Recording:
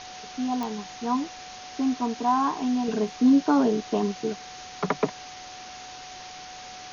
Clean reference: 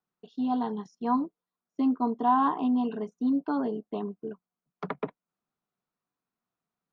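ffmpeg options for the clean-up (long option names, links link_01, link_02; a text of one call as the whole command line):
ffmpeg -i in.wav -af "adeclick=threshold=4,bandreject=frequency=740:width=30,afwtdn=0.011,asetnsamples=nb_out_samples=441:pad=0,asendcmd='2.88 volume volume -8dB',volume=0dB" out.wav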